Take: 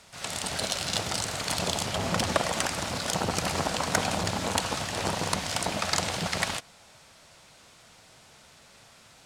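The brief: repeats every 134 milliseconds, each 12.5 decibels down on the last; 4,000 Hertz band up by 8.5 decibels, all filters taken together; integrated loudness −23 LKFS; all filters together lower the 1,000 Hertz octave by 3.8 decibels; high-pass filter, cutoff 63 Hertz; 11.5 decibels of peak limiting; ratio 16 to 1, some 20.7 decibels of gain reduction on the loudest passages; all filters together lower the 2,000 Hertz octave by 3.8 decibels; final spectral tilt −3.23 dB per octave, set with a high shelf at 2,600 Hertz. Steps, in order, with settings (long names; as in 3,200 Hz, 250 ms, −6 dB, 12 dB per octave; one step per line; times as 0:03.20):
high-pass filter 63 Hz
parametric band 1,000 Hz −4 dB
parametric band 2,000 Hz −9 dB
high-shelf EQ 2,600 Hz +4.5 dB
parametric band 4,000 Hz +9 dB
downward compressor 16 to 1, threshold −38 dBFS
brickwall limiter −30 dBFS
repeating echo 134 ms, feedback 24%, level −12.5 dB
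level +19.5 dB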